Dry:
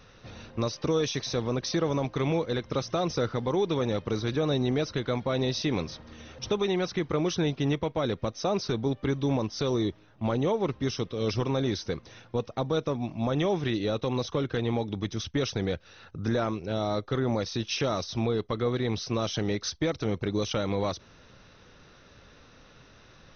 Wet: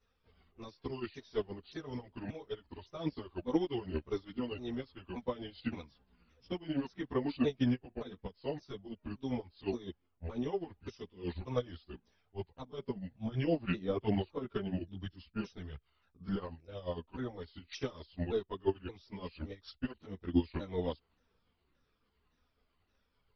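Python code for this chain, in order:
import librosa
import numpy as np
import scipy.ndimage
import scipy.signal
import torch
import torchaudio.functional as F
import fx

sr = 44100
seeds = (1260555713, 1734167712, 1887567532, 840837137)

y = fx.pitch_ramps(x, sr, semitones=-5.5, every_ms=572)
y = fx.chorus_voices(y, sr, voices=6, hz=0.59, base_ms=14, depth_ms=2.6, mix_pct=65)
y = fx.upward_expand(y, sr, threshold_db=-38.0, expansion=2.5)
y = y * librosa.db_to_amplitude(1.0)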